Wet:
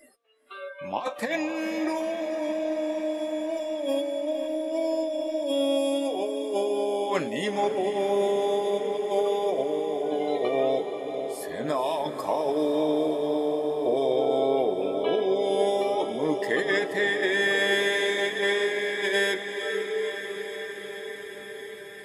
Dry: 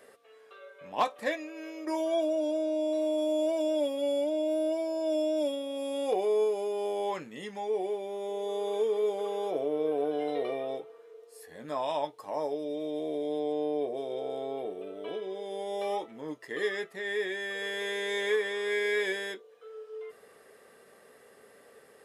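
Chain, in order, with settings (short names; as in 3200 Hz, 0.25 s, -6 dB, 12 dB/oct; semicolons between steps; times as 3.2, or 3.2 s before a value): negative-ratio compressor -35 dBFS, ratio -1; spectral noise reduction 24 dB; diffused feedback echo 0.486 s, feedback 75%, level -9 dB; gain +8 dB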